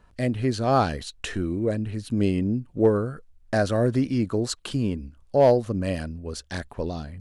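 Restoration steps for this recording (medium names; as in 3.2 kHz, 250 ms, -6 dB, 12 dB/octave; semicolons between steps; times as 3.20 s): clip repair -9.5 dBFS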